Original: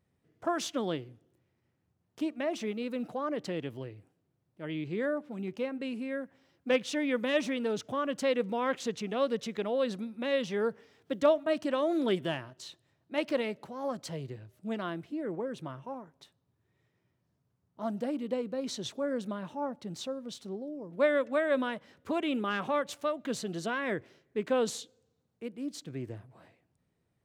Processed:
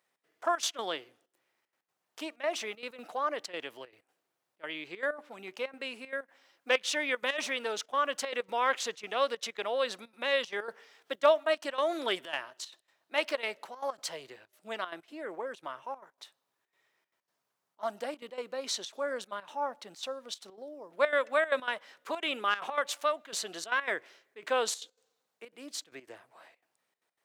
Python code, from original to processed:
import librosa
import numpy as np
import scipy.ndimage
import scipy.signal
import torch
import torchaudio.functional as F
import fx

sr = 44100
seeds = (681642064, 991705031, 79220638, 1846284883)

y = scipy.signal.sosfilt(scipy.signal.butter(2, 790.0, 'highpass', fs=sr, output='sos'), x)
y = fx.step_gate(y, sr, bpm=191, pattern='xx.xxxx.x.xxxx', floor_db=-12.0, edge_ms=4.5)
y = y * librosa.db_to_amplitude(6.5)